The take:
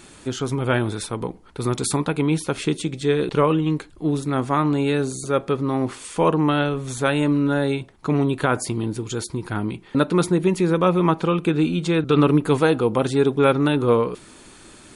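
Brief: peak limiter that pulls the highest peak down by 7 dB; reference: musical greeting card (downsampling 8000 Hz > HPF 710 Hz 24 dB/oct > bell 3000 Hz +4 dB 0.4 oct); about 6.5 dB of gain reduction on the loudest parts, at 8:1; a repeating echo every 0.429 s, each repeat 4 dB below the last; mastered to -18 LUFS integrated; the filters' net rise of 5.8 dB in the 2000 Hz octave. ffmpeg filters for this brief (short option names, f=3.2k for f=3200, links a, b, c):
-af "equalizer=f=2k:t=o:g=7.5,acompressor=threshold=-18dB:ratio=8,alimiter=limit=-14.5dB:level=0:latency=1,aecho=1:1:429|858|1287|1716|2145|2574|3003|3432|3861:0.631|0.398|0.25|0.158|0.0994|0.0626|0.0394|0.0249|0.0157,aresample=8000,aresample=44100,highpass=f=710:w=0.5412,highpass=f=710:w=1.3066,equalizer=f=3k:t=o:w=0.4:g=4,volume=11.5dB"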